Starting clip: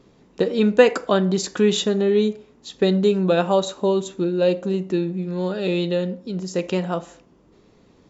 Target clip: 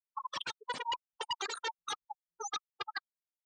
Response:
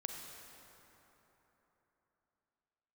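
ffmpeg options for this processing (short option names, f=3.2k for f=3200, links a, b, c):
-filter_complex "[0:a]aresample=16000,asoftclip=type=tanh:threshold=-18dB,aresample=44100,equalizer=f=2.8k:w=0.83:g=7.5,acrossover=split=520|900[a][b][c];[a]acompressor=threshold=-33dB:ratio=8[d];[d][b][c]amix=inputs=3:normalize=0,acrossover=split=240[e][f];[e]adelay=220[g];[g][f]amix=inputs=2:normalize=0,asetrate=103194,aresample=44100,acrusher=bits=5:dc=4:mix=0:aa=0.000001,afftfilt=real='re*gte(hypot(re,im),0.2)':imag='im*gte(hypot(re,im),0.2)':win_size=1024:overlap=0.75,aeval=exprs='(mod(22.4*val(0)+1,2)-1)/22.4':c=same,highpass=110,lowpass=5.8k,equalizer=f=200:w=7:g=-5,acontrast=22,afftdn=nr=30:nf=-35,volume=-5dB"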